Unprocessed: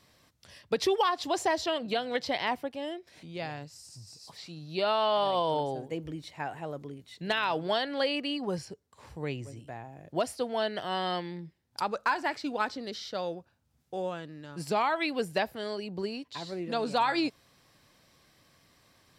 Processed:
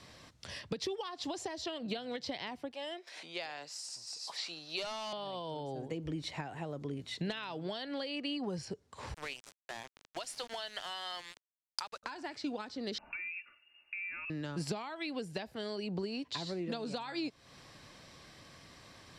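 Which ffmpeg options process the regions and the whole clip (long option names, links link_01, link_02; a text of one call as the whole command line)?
ffmpeg -i in.wav -filter_complex "[0:a]asettb=1/sr,asplit=3[link_01][link_02][link_03];[link_01]atrim=end=2.744[link_04];[link_02]atrim=start=2.74:end=5.13,asetpts=PTS-STARTPTS,afade=type=in:duration=0.004:curve=qsin,afade=type=out:start_time=2.386:duration=0.004:curve=qsin,highpass=670,asoftclip=type=hard:threshold=-28.5dB[link_05];[link_03]atrim=start=5.126[link_06];[link_04][link_05]acrossfade=duration=0.004:curve1=hsin:curve2=qsin[link_07];[link_07][link_06]acrossfade=duration=0.004:curve1=qsin:curve2=hsin,asettb=1/sr,asplit=3[link_08][link_09][link_10];[link_08]atrim=end=9.144[link_11];[link_09]atrim=start=9.14:end=12.03,asetpts=PTS-STARTPTS,afade=type=in:duration=0.004:curve=qsin,afade=type=out:start_time=2.886:duration=0.004:curve=qsin,highpass=1000,highshelf=frequency=8200:gain=4.5,aeval=exprs='val(0)*gte(abs(val(0)),0.00531)':channel_layout=same[link_12];[link_10]atrim=start=12.026[link_13];[link_11][link_12]acrossfade=duration=0.004:curve1=hsin:curve2=qsin[link_14];[link_14][link_13]acrossfade=duration=0.004:curve1=qsin:curve2=hsin,asettb=1/sr,asplit=3[link_15][link_16][link_17];[link_15]atrim=end=12.984[link_18];[link_16]atrim=start=12.98:end=14.3,asetpts=PTS-STARTPTS,afade=type=in:duration=0.004:curve=qsin,afade=type=out:start_time=1.316:duration=0.004:curve=qsin,aecho=1:1:3.5:0.55,atrim=end_sample=58212,acompressor=threshold=-45dB:ratio=5:attack=3.2:release=140:knee=1:detection=peak,lowpass=frequency=2500:width_type=q:width=0.5098,lowpass=frequency=2500:width_type=q:width=0.6013,lowpass=frequency=2500:width_type=q:width=0.9,lowpass=frequency=2500:width_type=q:width=2.563,afreqshift=-2900[link_19];[link_17]atrim=start=14.296[link_20];[link_18][link_19]acrossfade=duration=0.004:curve1=hsin:curve2=qsin[link_21];[link_21][link_20]acrossfade=duration=0.004:curve1=qsin:curve2=hsin,acompressor=threshold=-42dB:ratio=5,lowpass=8000,acrossover=split=350|3000[link_22][link_23][link_24];[link_23]acompressor=threshold=-49dB:ratio=6[link_25];[link_22][link_25][link_24]amix=inputs=3:normalize=0,volume=8dB" out.wav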